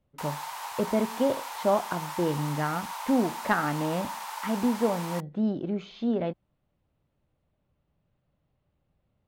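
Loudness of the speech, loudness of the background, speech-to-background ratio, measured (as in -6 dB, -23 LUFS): -29.5 LUFS, -36.5 LUFS, 7.0 dB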